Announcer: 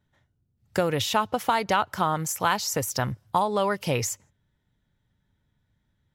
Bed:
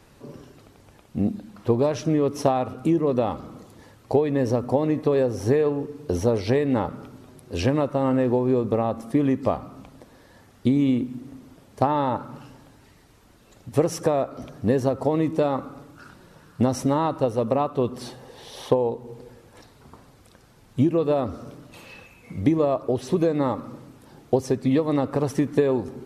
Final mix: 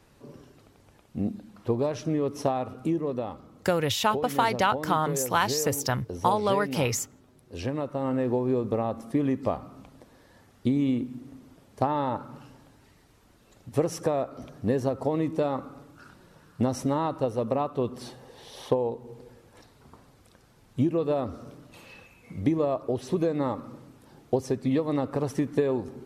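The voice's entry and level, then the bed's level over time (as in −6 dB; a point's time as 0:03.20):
2.90 s, −0.5 dB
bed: 0:02.86 −5.5 dB
0:03.45 −11.5 dB
0:07.33 −11.5 dB
0:08.34 −4.5 dB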